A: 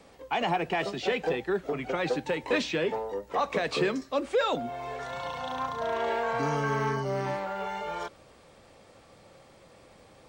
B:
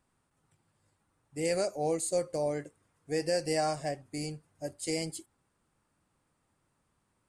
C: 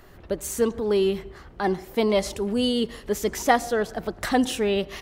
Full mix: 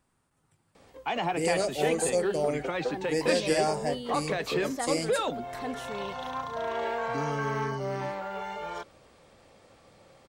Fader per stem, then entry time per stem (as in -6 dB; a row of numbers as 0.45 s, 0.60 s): -2.0 dB, +2.5 dB, -15.5 dB; 0.75 s, 0.00 s, 1.30 s